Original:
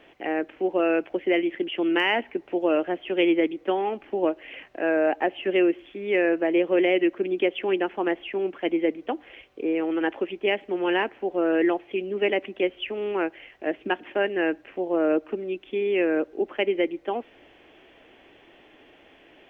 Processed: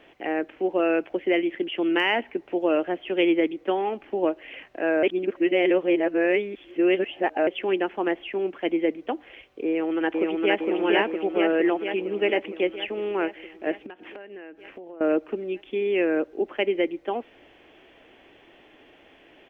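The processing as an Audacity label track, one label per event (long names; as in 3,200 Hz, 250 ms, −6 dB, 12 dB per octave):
5.030000	7.470000	reverse
9.680000	10.600000	delay throw 460 ms, feedback 70%, level −1.5 dB
13.860000	15.010000	downward compressor 20 to 1, threshold −37 dBFS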